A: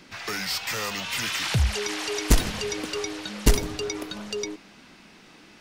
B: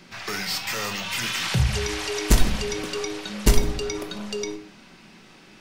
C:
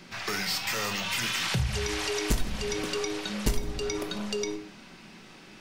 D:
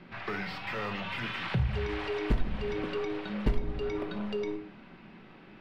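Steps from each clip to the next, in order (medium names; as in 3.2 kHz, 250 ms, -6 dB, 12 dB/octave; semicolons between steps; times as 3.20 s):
reverberation RT60 0.50 s, pre-delay 5 ms, DRR 5.5 dB
compression 2.5:1, threshold -27 dBFS, peak gain reduction 12 dB
distance through air 450 m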